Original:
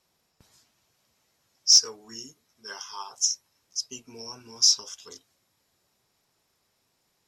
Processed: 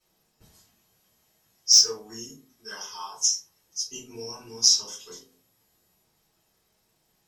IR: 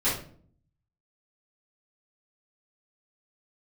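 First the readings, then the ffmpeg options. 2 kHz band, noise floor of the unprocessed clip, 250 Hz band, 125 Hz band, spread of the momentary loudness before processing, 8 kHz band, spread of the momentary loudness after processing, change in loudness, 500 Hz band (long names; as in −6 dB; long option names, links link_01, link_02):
+1.0 dB, −73 dBFS, +3.0 dB, can't be measured, 24 LU, +2.0 dB, 22 LU, +1.0 dB, +6.0 dB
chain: -filter_complex "[0:a]highshelf=frequency=9000:gain=9[link_01];[1:a]atrim=start_sample=2205,asetrate=70560,aresample=44100[link_02];[link_01][link_02]afir=irnorm=-1:irlink=0,volume=-6.5dB"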